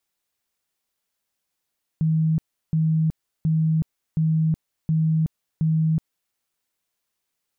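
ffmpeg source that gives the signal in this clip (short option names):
-f lavfi -i "aevalsrc='0.141*sin(2*PI*159*mod(t,0.72))*lt(mod(t,0.72),59/159)':d=4.32:s=44100"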